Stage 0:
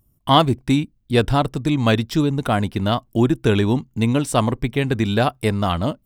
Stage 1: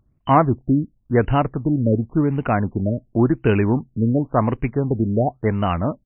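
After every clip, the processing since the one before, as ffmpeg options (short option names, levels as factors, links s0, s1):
-af "aresample=16000,acrusher=bits=6:mode=log:mix=0:aa=0.000001,aresample=44100,afftfilt=real='re*lt(b*sr/1024,620*pow(3100/620,0.5+0.5*sin(2*PI*0.93*pts/sr)))':imag='im*lt(b*sr/1024,620*pow(3100/620,0.5+0.5*sin(2*PI*0.93*pts/sr)))':win_size=1024:overlap=0.75"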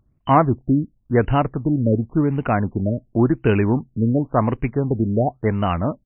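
-af anull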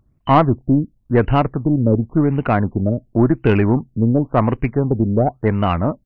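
-af "aeval=exprs='(tanh(2.24*val(0)+0.35)-tanh(0.35))/2.24':c=same,volume=1.58"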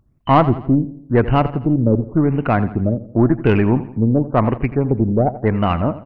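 -af "aecho=1:1:84|168|252|336:0.178|0.0836|0.0393|0.0185"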